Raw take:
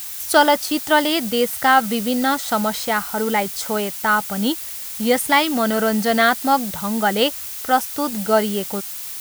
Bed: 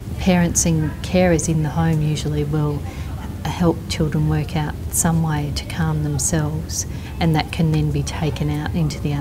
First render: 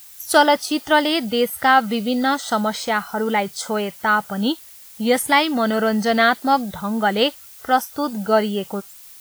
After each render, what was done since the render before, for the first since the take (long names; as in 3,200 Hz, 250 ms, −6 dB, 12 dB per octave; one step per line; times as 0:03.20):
noise reduction from a noise print 12 dB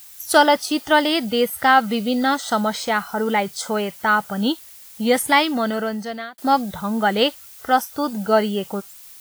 0:05.42–0:06.38: fade out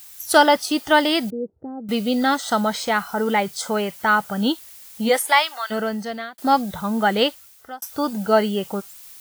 0:01.30–0:01.89: transistor ladder low-pass 430 Hz, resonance 55%
0:05.08–0:05.70: high-pass filter 310 Hz → 1,100 Hz 24 dB per octave
0:07.16–0:07.82: fade out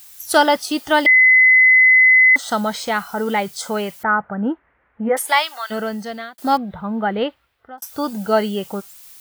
0:01.06–0:02.36: beep over 2,030 Hz −7.5 dBFS
0:04.03–0:05.17: Butterworth low-pass 1,900 Hz
0:06.57–0:07.78: high-frequency loss of the air 480 metres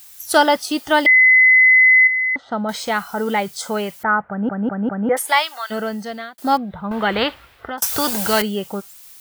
0:02.07–0:02.69: head-to-tape spacing loss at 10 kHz 43 dB
0:04.29: stutter in place 0.20 s, 4 plays
0:06.91–0:08.42: every bin compressed towards the loudest bin 2 to 1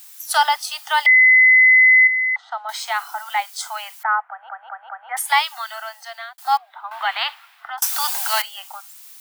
Butterworth high-pass 720 Hz 72 dB per octave
dynamic equaliser 1,500 Hz, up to −3 dB, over −33 dBFS, Q 4.3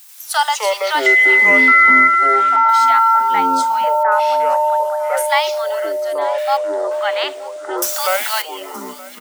delay with pitch and tempo change per echo 89 ms, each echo −7 semitones, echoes 3
single-tap delay 922 ms −20 dB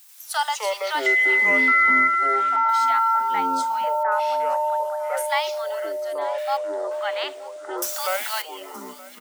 level −7.5 dB